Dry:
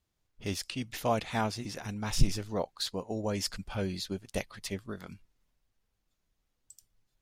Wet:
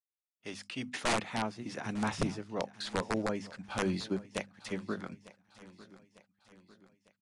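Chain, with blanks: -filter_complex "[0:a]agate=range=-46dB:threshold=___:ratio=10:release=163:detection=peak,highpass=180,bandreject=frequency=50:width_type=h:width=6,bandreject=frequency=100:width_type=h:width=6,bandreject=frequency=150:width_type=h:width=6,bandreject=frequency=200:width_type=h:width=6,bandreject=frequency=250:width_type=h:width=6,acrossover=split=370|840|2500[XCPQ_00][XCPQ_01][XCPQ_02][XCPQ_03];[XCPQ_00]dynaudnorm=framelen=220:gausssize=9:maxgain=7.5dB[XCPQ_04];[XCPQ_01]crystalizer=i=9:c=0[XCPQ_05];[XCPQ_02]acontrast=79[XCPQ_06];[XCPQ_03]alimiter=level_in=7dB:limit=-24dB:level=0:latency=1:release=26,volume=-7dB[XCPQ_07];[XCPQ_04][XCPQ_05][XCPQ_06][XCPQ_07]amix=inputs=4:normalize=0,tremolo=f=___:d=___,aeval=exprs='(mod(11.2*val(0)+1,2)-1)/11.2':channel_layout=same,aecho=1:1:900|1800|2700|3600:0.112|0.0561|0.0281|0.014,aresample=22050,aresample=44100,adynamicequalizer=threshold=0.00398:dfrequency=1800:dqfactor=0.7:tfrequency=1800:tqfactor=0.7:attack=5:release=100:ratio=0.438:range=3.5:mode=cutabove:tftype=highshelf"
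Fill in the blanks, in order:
-45dB, 1, 0.6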